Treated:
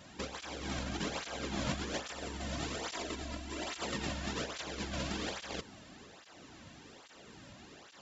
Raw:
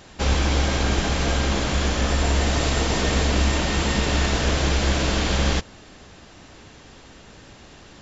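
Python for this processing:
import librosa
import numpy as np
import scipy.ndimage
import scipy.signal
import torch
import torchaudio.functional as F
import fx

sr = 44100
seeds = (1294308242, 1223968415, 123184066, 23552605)

y = fx.comb(x, sr, ms=3.0, depth=0.52, at=(2.94, 3.8))
y = fx.over_compress(y, sr, threshold_db=-25.0, ratio=-1.0)
y = fx.flanger_cancel(y, sr, hz=1.2, depth_ms=2.7)
y = F.gain(torch.from_numpy(y), -9.0).numpy()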